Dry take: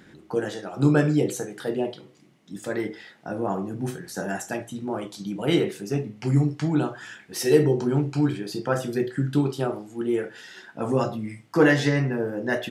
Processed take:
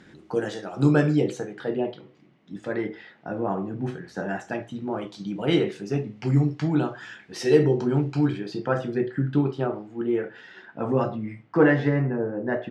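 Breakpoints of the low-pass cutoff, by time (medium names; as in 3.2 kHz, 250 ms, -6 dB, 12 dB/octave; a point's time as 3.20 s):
0.88 s 7.9 kHz
1.57 s 3 kHz
4.36 s 3 kHz
5.46 s 4.9 kHz
8.28 s 4.9 kHz
8.93 s 2.5 kHz
11.30 s 2.5 kHz
12.09 s 1.4 kHz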